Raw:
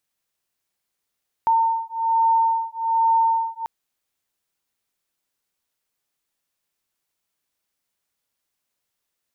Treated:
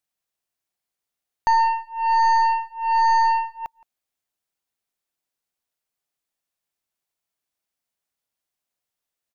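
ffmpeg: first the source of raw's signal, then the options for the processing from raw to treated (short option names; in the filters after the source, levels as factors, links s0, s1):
-f lavfi -i "aevalsrc='0.1*(sin(2*PI*907*t)+sin(2*PI*908.2*t))':d=2.19:s=44100"
-filter_complex "[0:a]equalizer=f=700:t=o:w=0.33:g=4.5,aeval=exprs='0.251*(cos(1*acos(clip(val(0)/0.251,-1,1)))-cos(1*PI/2))+0.0501*(cos(2*acos(clip(val(0)/0.251,-1,1)))-cos(2*PI/2))+0.0178*(cos(7*acos(clip(val(0)/0.251,-1,1)))-cos(7*PI/2))':c=same,asplit=2[s0][s1];[s1]adelay=169.1,volume=0.0708,highshelf=f=4000:g=-3.8[s2];[s0][s2]amix=inputs=2:normalize=0"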